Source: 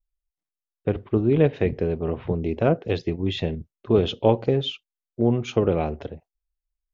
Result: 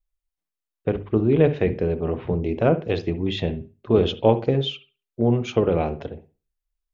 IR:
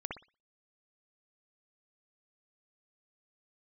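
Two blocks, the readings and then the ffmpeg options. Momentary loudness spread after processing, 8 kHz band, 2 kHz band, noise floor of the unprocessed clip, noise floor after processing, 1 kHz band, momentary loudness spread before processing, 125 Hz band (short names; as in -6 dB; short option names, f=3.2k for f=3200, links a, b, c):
10 LU, n/a, +1.5 dB, under -85 dBFS, under -85 dBFS, +1.5 dB, 11 LU, +1.0 dB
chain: -filter_complex "[0:a]bandreject=f=50:t=h:w=6,bandreject=f=100:t=h:w=6,bandreject=f=150:t=h:w=6,bandreject=f=200:t=h:w=6,bandreject=f=250:t=h:w=6,bandreject=f=300:t=h:w=6,bandreject=f=350:t=h:w=6,bandreject=f=400:t=h:w=6,asplit=2[a][b];[1:a]atrim=start_sample=2205,lowpass=4.7k[c];[b][c]afir=irnorm=-1:irlink=0,volume=-11dB[d];[a][d]amix=inputs=2:normalize=0"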